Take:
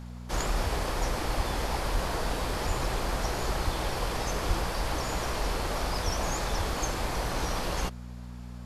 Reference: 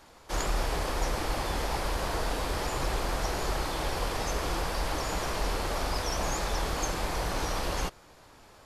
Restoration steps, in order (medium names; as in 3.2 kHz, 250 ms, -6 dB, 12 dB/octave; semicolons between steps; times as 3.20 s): de-hum 60.4 Hz, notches 4; de-plosive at 0.63/1.36/1.93/2.67/3.64/4.47/6.04/6.57 s